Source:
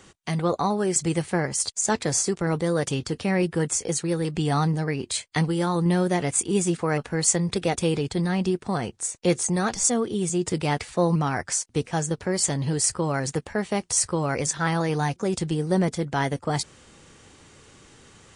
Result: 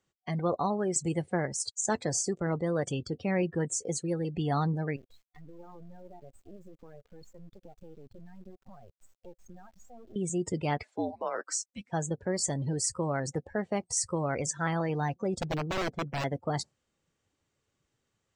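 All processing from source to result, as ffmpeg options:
-filter_complex "[0:a]asettb=1/sr,asplit=3[s0][s1][s2];[s0]atrim=end=4.964[s3];[s1]atrim=start=4.96:end=10.16,asetpts=PTS-STARTPTS,afade=t=in:d=0.004:c=qsin,afade=t=out:st=5.196:d=0.004:c=qsin,lowpass=6400,acompressor=threshold=0.02:ratio=12:attack=3.2:release=140:knee=1:detection=peak,acrusher=bits=4:dc=4:mix=0:aa=0.000001[s4];[s2]atrim=start=10.156[s5];[s3][s4]acrossfade=d=0.004:c1=hsin:c2=qsin[s6];[s6][s5]acrossfade=d=0.004:c1=qsin:c2=hsin,asettb=1/sr,asplit=3[s7][s8][s9];[s7]atrim=end=10.834[s10];[s8]atrim=start=10.83:end=11.9,asetpts=PTS-STARTPTS,afade=t=in:d=0.004:c=qsin,afade=t=out:st=1.066:d=0.004:c=qsin,highpass=f=550:w=0.5412,highpass=f=550:w=1.3066,afreqshift=-240[s11];[s9]atrim=start=11.896[s12];[s10][s11]acrossfade=d=0.004:c1=hsin:c2=qsin[s13];[s13][s12]acrossfade=d=0.004:c1=qsin:c2=hsin,asettb=1/sr,asplit=3[s14][s15][s16];[s14]atrim=end=15.404[s17];[s15]atrim=start=15.4:end=16.24,asetpts=PTS-STARTPTS,afade=t=in:d=0.004:c=qsin,afade=t=out:st=0.836:d=0.004:c=qsin,lowpass=f=1400:p=1,aeval=exprs='(mod(9.44*val(0)+1,2)-1)/9.44':c=same[s18];[s16]atrim=start=16.236[s19];[s17][s18]acrossfade=d=0.004:c1=hsin:c2=qsin[s20];[s20][s19]acrossfade=d=0.004:c1=qsin:c2=hsin,afftdn=nr=23:nf=-34,superequalizer=8b=1.41:16b=0.501,volume=0.501"

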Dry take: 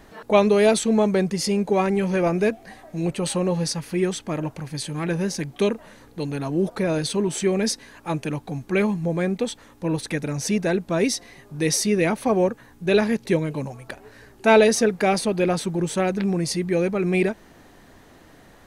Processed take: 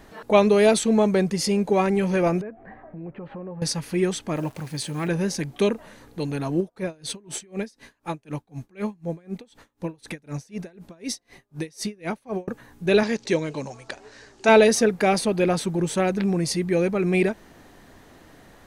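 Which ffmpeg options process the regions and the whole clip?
-filter_complex "[0:a]asettb=1/sr,asplit=3[s0][s1][s2];[s0]atrim=end=2.414[s3];[s1]atrim=start=2.41:end=3.62,asetpts=PTS-STARTPTS,afade=t=in:d=0.004:c=qsin,afade=t=out:st=1.206:d=0.004:c=qsin,lowpass=f=1800:w=0.5412,lowpass=f=1800:w=1.3066,acompressor=threshold=0.0141:ratio=3:attack=3.2:release=140:knee=1:detection=peak[s4];[s2]atrim=start=3.616[s5];[s3][s4]acrossfade=d=0.004:c1=hsin:c2=qsin[s6];[s6][s5]acrossfade=d=0.004:c1=qsin:c2=hsin,asettb=1/sr,asplit=3[s7][s8][s9];[s7]atrim=end=4.364[s10];[s8]atrim=start=4.36:end=5.08,asetpts=PTS-STARTPTS,afade=t=in:d=0.004:c=qsin,afade=t=out:st=0.716:d=0.004:c=qsin,highpass=f=55:p=1,acrusher=bits=9:dc=4:mix=0:aa=0.000001[s11];[s9]atrim=start=5.076[s12];[s10][s11]acrossfade=d=0.004:c1=hsin:c2=qsin[s13];[s13][s12]acrossfade=d=0.004:c1=qsin:c2=hsin,asettb=1/sr,asplit=3[s14][s15][s16];[s14]atrim=end=6.604[s17];[s15]atrim=start=6.6:end=12.48,asetpts=PTS-STARTPTS,afade=t=in:d=0.004:c=qsin,afade=t=out:st=5.876:d=0.004:c=qsin,acompressor=threshold=0.0708:ratio=2:attack=3.2:release=140:knee=1:detection=peak,aeval=exprs='val(0)*pow(10,-30*(0.5-0.5*cos(2*PI*4*n/s))/20)':c=same[s18];[s16]atrim=start=12.476[s19];[s17][s18]acrossfade=d=0.004:c1=hsin:c2=qsin[s20];[s20][s19]acrossfade=d=0.004:c1=qsin:c2=hsin,asettb=1/sr,asplit=3[s21][s22][s23];[s21]atrim=end=13.034[s24];[s22]atrim=start=13.03:end=14.49,asetpts=PTS-STARTPTS,afade=t=in:d=0.004:c=qsin,afade=t=out:st=1.456:d=0.004:c=qsin,lowpass=f=6900:w=0.5412,lowpass=f=6900:w=1.3066,bass=f=250:g=-7,treble=f=4000:g=10[s25];[s23]atrim=start=14.486[s26];[s24][s25]acrossfade=d=0.004:c1=hsin:c2=qsin[s27];[s27][s26]acrossfade=d=0.004:c1=qsin:c2=hsin"

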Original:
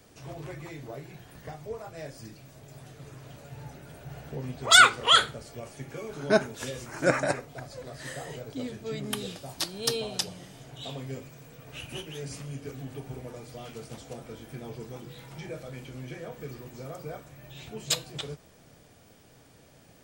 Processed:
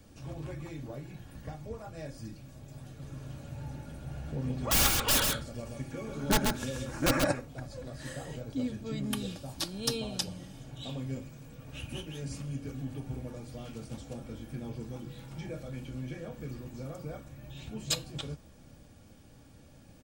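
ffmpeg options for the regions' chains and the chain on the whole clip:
-filter_complex "[0:a]asettb=1/sr,asplit=3[s0][s1][s2];[s0]atrim=end=2.894[s3];[s1]atrim=start=2.89:end=7.27,asetpts=PTS-STARTPTS,afade=t=in:d=0.004:c=qsin,afade=t=out:st=4.376:d=0.004:c=qsin,aeval=exprs='(mod(6.31*val(0)+1,2)-1)/6.31':c=same,aecho=1:1:133:0.631,atrim=end_sample=193158[s4];[s2]atrim=start=7.266[s5];[s3][s4]acrossfade=d=0.004:c1=hsin:c2=qsin[s6];[s6][s5]acrossfade=d=0.004:c1=qsin:c2=hsin,bass=f=250:g=11,treble=f=4000:g=0,bandreject=f=2000:w=17,aecho=1:1:3.6:0.39,volume=0.596"

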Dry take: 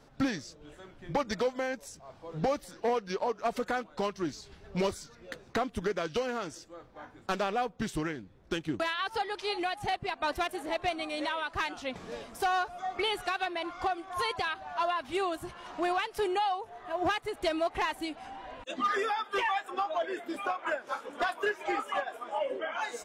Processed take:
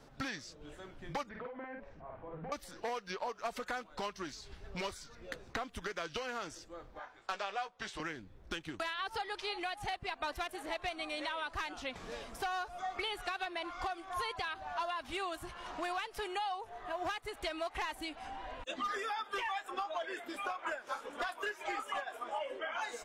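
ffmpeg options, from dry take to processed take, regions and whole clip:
-filter_complex "[0:a]asettb=1/sr,asplit=3[s0][s1][s2];[s0]atrim=end=1.294[s3];[s1]atrim=start=1.29:end=2.52,asetpts=PTS-STARTPTS,afade=t=in:d=0.004:c=qsin,afade=t=out:st=1.226:d=0.004:c=qsin,lowpass=f=2200:w=0.5412,lowpass=f=2200:w=1.3066,acompressor=threshold=0.00708:ratio=3:attack=3.2:release=140:knee=1:detection=peak,asplit=2[s4][s5];[s5]adelay=49,volume=0.794[s6];[s4][s6]amix=inputs=2:normalize=0,atrim=end_sample=54243[s7];[s2]atrim=start=2.516[s8];[s3][s7]acrossfade=d=0.004:c1=hsin:c2=qsin[s9];[s9][s8]acrossfade=d=0.004:c1=qsin:c2=hsin,asettb=1/sr,asplit=3[s10][s11][s12];[s10]atrim=end=6.994[s13];[s11]atrim=start=6.99:end=8,asetpts=PTS-STARTPTS,afade=t=in:d=0.004:c=qsin,afade=t=out:st=1.006:d=0.004:c=qsin,acrossover=split=530 7900:gain=0.126 1 0.141[s14][s15][s16];[s14][s15][s16]amix=inputs=3:normalize=0,asoftclip=type=hard:threshold=0.0841,asplit=2[s17][s18];[s18]adelay=15,volume=0.376[s19];[s17][s19]amix=inputs=2:normalize=0,atrim=end_sample=44541[s20];[s12]atrim=start=7.996[s21];[s13][s20]acrossfade=d=0.004:c1=hsin:c2=qsin[s22];[s22][s21]acrossfade=d=0.004:c1=qsin:c2=hsin,asubboost=boost=2.5:cutoff=78,acrossover=split=840|4400[s23][s24][s25];[s23]acompressor=threshold=0.00631:ratio=4[s26];[s24]acompressor=threshold=0.0126:ratio=4[s27];[s25]acompressor=threshold=0.00224:ratio=4[s28];[s26][s27][s28]amix=inputs=3:normalize=0"

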